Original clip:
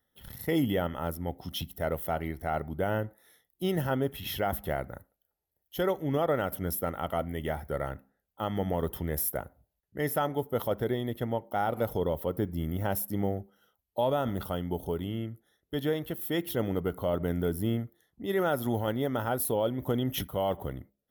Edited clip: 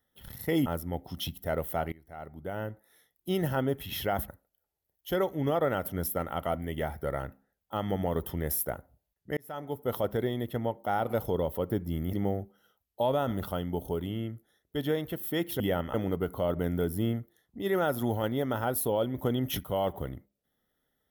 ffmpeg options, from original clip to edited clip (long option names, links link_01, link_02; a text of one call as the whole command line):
ffmpeg -i in.wav -filter_complex "[0:a]asplit=8[link_01][link_02][link_03][link_04][link_05][link_06][link_07][link_08];[link_01]atrim=end=0.662[link_09];[link_02]atrim=start=0.998:end=2.26,asetpts=PTS-STARTPTS,afade=type=out:start_time=1.258:duration=0.004:curve=hsin:silence=0.0707946[link_10];[link_03]atrim=start=2.26:end=4.622,asetpts=PTS-STARTPTS,afade=type=in:duration=1.42:silence=0.0707946[link_11];[link_04]atrim=start=4.948:end=10.04,asetpts=PTS-STARTPTS,afade=type=out:start_time=5.088:duration=0.004:curve=hsin[link_12];[link_05]atrim=start=10.04:end=12.802,asetpts=PTS-STARTPTS,afade=type=in:duration=0.58[link_13];[link_06]atrim=start=13.108:end=16.582[link_14];[link_07]atrim=start=0.658:end=1.002[link_15];[link_08]atrim=start=16.578[link_16];[link_10][link_11]concat=n=2:v=0:a=1[link_17];[link_09][link_17]acrossfade=duration=0.004:curve1=hsin:curve2=hsin[link_18];[link_12][link_13]concat=n=2:v=0:a=1[link_19];[link_18][link_19]acrossfade=duration=0.004:curve1=hsin:curve2=hsin[link_20];[link_20][link_14]acrossfade=duration=0.004:curve1=hsin:curve2=hsin[link_21];[link_21][link_15]acrossfade=duration=0.004:curve1=hsin:curve2=hsin[link_22];[link_22][link_16]acrossfade=duration=0.004:curve1=hsin:curve2=hsin" out.wav